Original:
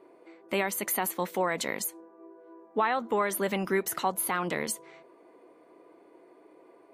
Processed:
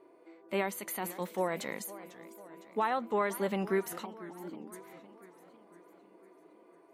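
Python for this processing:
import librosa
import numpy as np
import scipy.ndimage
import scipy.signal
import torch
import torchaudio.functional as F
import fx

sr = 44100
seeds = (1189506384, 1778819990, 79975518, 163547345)

y = fx.formant_cascade(x, sr, vowel='u', at=(4.04, 4.72), fade=0.02)
y = fx.hpss(y, sr, part='percussive', gain_db=-8)
y = fx.echo_warbled(y, sr, ms=502, feedback_pct=56, rate_hz=2.8, cents=210, wet_db=-16.5)
y = y * librosa.db_to_amplitude(-2.0)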